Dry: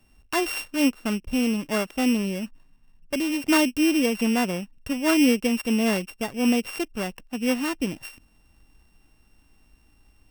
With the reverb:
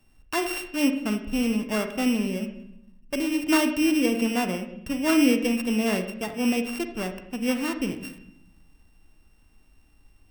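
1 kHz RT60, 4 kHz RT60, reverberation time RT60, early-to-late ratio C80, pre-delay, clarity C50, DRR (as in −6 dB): 0.65 s, 0.70 s, 0.75 s, 12.0 dB, 37 ms, 9.0 dB, 7.0 dB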